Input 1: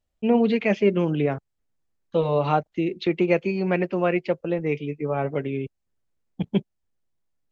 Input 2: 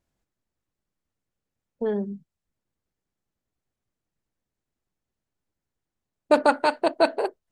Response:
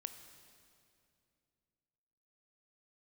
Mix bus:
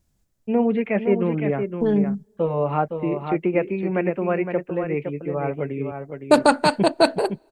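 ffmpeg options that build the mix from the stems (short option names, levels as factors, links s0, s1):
-filter_complex "[0:a]lowpass=f=2300:w=0.5412,lowpass=f=2300:w=1.3066,adelay=250,volume=0.944,asplit=2[s0][s1];[s1]volume=0.447[s2];[1:a]bass=f=250:g=11,treble=f=4000:g=9,volume=1.26,asplit=2[s3][s4];[s4]volume=0.075[s5];[2:a]atrim=start_sample=2205[s6];[s5][s6]afir=irnorm=-1:irlink=0[s7];[s2]aecho=0:1:513:1[s8];[s0][s3][s7][s8]amix=inputs=4:normalize=0"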